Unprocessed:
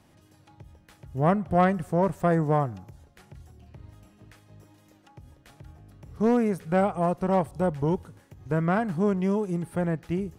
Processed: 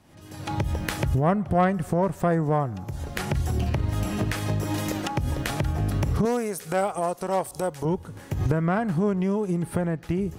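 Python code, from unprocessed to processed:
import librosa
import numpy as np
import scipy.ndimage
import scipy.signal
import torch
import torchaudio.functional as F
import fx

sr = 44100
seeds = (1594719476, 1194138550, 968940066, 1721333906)

y = fx.recorder_agc(x, sr, target_db=-17.5, rise_db_per_s=51.0, max_gain_db=30)
y = fx.bass_treble(y, sr, bass_db=-12, treble_db=13, at=(6.25, 7.85))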